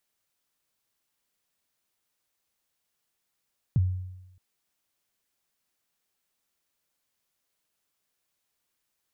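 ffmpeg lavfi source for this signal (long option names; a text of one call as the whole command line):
ffmpeg -f lavfi -i "aevalsrc='0.141*pow(10,-3*t/0.95)*sin(2*PI*(160*0.03/log(92/160)*(exp(log(92/160)*min(t,0.03)/0.03)-1)+92*max(t-0.03,0)))':duration=0.62:sample_rate=44100" out.wav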